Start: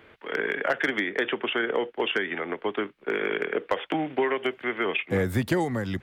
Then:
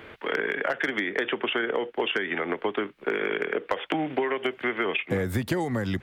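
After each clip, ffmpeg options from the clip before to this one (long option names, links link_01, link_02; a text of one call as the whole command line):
ffmpeg -i in.wav -af "acompressor=threshold=-33dB:ratio=4,volume=8dB" out.wav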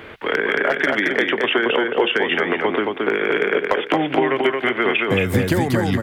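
ffmpeg -i in.wav -af "aecho=1:1:223|446|669:0.708|0.163|0.0375,volume=7dB" out.wav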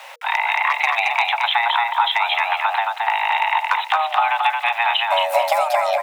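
ffmpeg -i in.wav -af "aeval=exprs='val(0)*gte(abs(val(0)),0.00891)':channel_layout=same,afreqshift=470" out.wav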